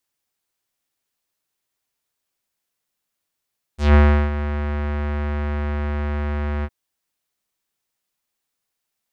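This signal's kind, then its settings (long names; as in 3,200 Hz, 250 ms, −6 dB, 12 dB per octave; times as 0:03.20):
subtractive voice square D2 12 dB per octave, low-pass 1,900 Hz, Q 1.5, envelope 2.5 octaves, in 0.13 s, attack 159 ms, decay 0.36 s, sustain −13 dB, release 0.05 s, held 2.86 s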